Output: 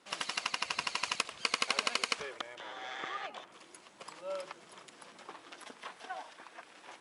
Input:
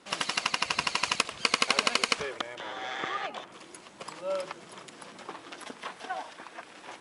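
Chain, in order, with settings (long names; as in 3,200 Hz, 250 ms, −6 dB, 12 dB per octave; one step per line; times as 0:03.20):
low-shelf EQ 310 Hz −6.5 dB
level −6 dB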